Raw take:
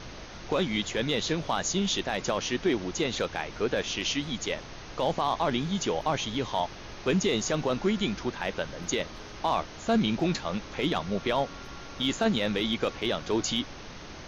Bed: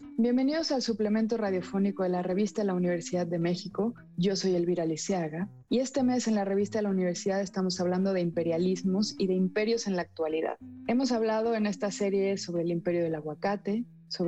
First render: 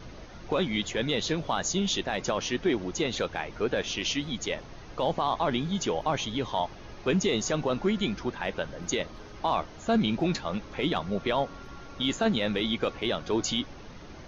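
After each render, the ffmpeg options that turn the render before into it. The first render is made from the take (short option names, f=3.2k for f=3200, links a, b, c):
-af "afftdn=nr=8:nf=-43"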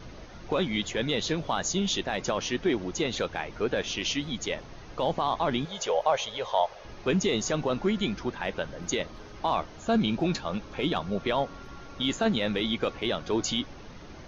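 -filter_complex "[0:a]asettb=1/sr,asplit=3[a][b][c];[a]atrim=end=5.654[d];[b]atrim=start=5.65:end=6.85,asetpts=PTS-STARTPTS,afade=t=in:d=0.004:c=qsin,afade=t=out:st=1.196:d=0.004:c=qsin,lowshelf=f=390:t=q:w=3:g=-11[e];[c]atrim=start=6.846[f];[d][e]acrossfade=d=0.004:c1=hsin:c2=qsin[g];[g][f]acrossfade=d=0.004:c1=qsin:c2=hsin,asettb=1/sr,asplit=3[h][i][j];[h]atrim=end=9.804[k];[i]atrim=start=9.8:end=11.2,asetpts=PTS-STARTPTS,afade=t=in:d=0.004:c=qsin,afade=t=out:st=1.396:d=0.004:c=qsin,bandreject=f=2k:w=12[l];[j]atrim=start=11.196[m];[k][l]acrossfade=d=0.004:c1=hsin:c2=qsin[n];[n][m]acrossfade=d=0.004:c1=qsin:c2=hsin"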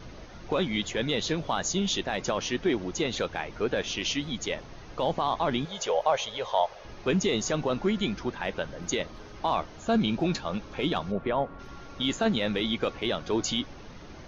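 -filter_complex "[0:a]asplit=3[a][b][c];[a]afade=t=out:st=11.11:d=0.02[d];[b]lowpass=1.8k,afade=t=in:st=11.11:d=0.02,afade=t=out:st=11.58:d=0.02[e];[c]afade=t=in:st=11.58:d=0.02[f];[d][e][f]amix=inputs=3:normalize=0"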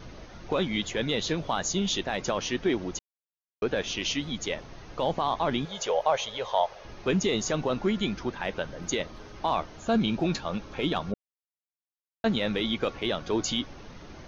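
-filter_complex "[0:a]asplit=5[a][b][c][d][e];[a]atrim=end=2.99,asetpts=PTS-STARTPTS,afade=t=out:st=2.986:d=0.004:c=hsin[f];[b]atrim=start=2.99:end=3.62,asetpts=PTS-STARTPTS,volume=0[g];[c]atrim=start=3.62:end=11.14,asetpts=PTS-STARTPTS,afade=t=in:d=0.004:c=hsin,afade=t=out:st=7.516:d=0.004:c=hsin[h];[d]atrim=start=11.14:end=12.24,asetpts=PTS-STARTPTS,volume=0[i];[e]atrim=start=12.24,asetpts=PTS-STARTPTS,afade=t=in:d=0.004:c=hsin[j];[f][g][h][i][j]concat=n=5:v=0:a=1"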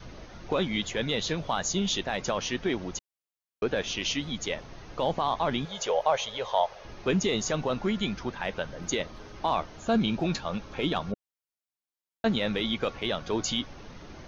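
-af "adynamicequalizer=threshold=0.00708:dfrequency=330:dqfactor=2.1:tfrequency=330:tqfactor=2.1:attack=5:release=100:ratio=0.375:range=2.5:mode=cutabove:tftype=bell"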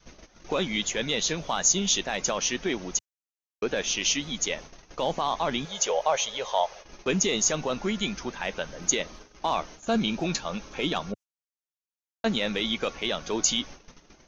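-af "agate=range=-14dB:threshold=-42dB:ratio=16:detection=peak,equalizer=f=100:t=o:w=0.67:g=-11,equalizer=f=2.5k:t=o:w=0.67:g=3,equalizer=f=6.3k:t=o:w=0.67:g=11"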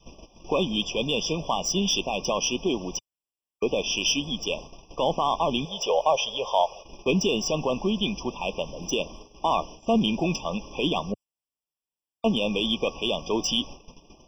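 -filter_complex "[0:a]asplit=2[a][b];[b]asoftclip=type=hard:threshold=-19dB,volume=-6dB[c];[a][c]amix=inputs=2:normalize=0,afftfilt=real='re*eq(mod(floor(b*sr/1024/1200),2),0)':imag='im*eq(mod(floor(b*sr/1024/1200),2),0)':win_size=1024:overlap=0.75"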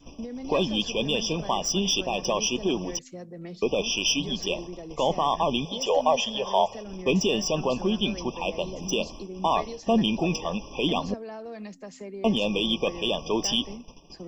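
-filter_complex "[1:a]volume=-11dB[a];[0:a][a]amix=inputs=2:normalize=0"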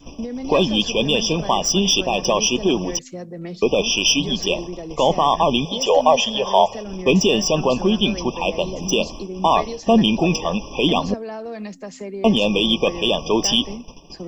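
-af "volume=7.5dB"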